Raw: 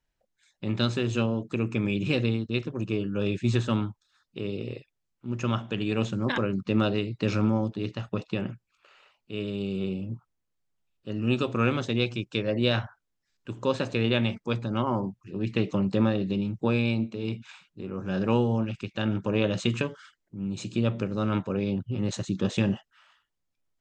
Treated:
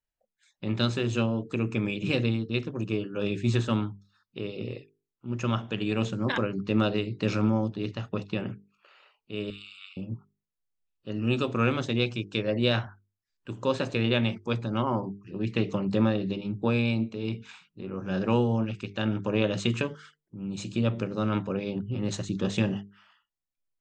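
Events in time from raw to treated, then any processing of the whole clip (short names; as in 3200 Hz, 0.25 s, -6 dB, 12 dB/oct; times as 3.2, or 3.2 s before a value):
9.5–9.97 brick-wall FIR high-pass 1100 Hz
whole clip: spectral noise reduction 11 dB; notches 50/100/150/200/250/300/350/400/450 Hz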